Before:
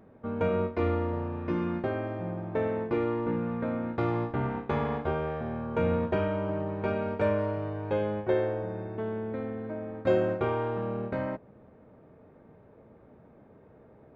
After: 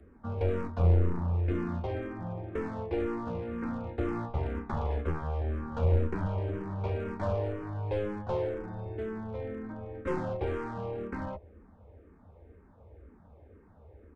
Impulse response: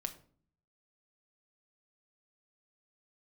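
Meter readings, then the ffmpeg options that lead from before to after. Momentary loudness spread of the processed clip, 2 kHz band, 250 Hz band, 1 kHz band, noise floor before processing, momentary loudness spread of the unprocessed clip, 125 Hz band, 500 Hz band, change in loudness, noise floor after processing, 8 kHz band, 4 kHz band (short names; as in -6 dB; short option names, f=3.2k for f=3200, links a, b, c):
10 LU, -6.0 dB, -4.5 dB, -4.5 dB, -56 dBFS, 7 LU, +3.0 dB, -5.5 dB, -2.5 dB, -57 dBFS, n/a, -5.0 dB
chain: -filter_complex "[0:a]bandreject=f=630:w=16,acrossover=split=140|590|1200[a][b][c][d];[a]lowshelf=f=110:t=q:w=3:g=10.5[e];[d]alimiter=level_in=13dB:limit=-24dB:level=0:latency=1:release=467,volume=-13dB[f];[e][b][c][f]amix=inputs=4:normalize=0,aeval=exprs='clip(val(0),-1,0.0335)':c=same,aresample=22050,aresample=44100,asplit=2[g][h];[h]afreqshift=-2[i];[g][i]amix=inputs=2:normalize=1"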